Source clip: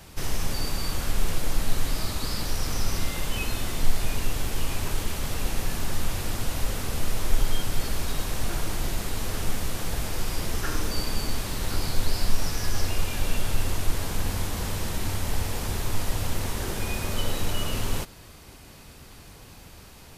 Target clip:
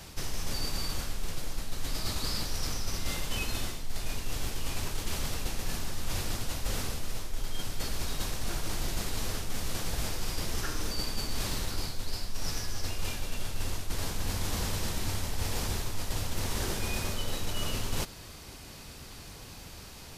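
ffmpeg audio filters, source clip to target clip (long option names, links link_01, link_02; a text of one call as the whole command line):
ffmpeg -i in.wav -af "equalizer=frequency=5100:width_type=o:width=1.3:gain=4.5,areverse,acompressor=threshold=-26dB:ratio=10,areverse" out.wav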